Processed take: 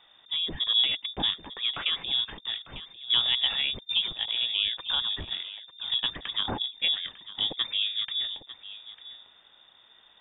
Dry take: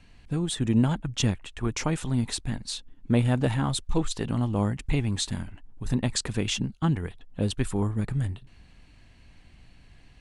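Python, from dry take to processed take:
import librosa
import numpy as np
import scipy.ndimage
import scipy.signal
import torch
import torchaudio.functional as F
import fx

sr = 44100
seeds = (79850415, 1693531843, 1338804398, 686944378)

p1 = fx.low_shelf(x, sr, hz=110.0, db=-11.0)
p2 = p1 + fx.echo_single(p1, sr, ms=899, db=-15.0, dry=0)
y = fx.freq_invert(p2, sr, carrier_hz=3600)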